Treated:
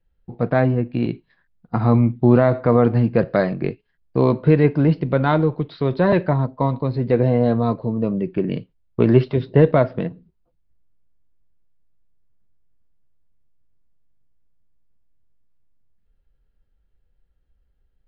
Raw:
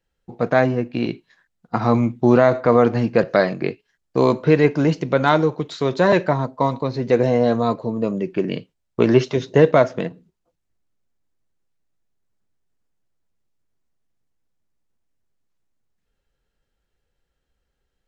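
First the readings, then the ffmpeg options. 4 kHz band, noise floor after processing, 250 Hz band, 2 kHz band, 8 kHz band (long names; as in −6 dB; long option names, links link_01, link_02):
−7.5 dB, −67 dBFS, +1.0 dB, −4.5 dB, can't be measured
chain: -af "aemphasis=mode=reproduction:type=bsi,aresample=11025,aresample=44100,volume=-3.5dB"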